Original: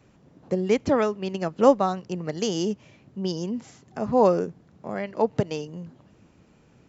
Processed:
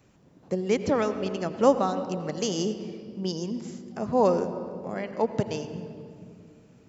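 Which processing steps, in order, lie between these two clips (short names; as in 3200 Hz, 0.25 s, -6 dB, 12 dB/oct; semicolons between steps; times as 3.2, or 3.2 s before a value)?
high shelf 6300 Hz +8 dB; on a send: reverb RT60 2.4 s, pre-delay 76 ms, DRR 10 dB; on the sum: gain -3 dB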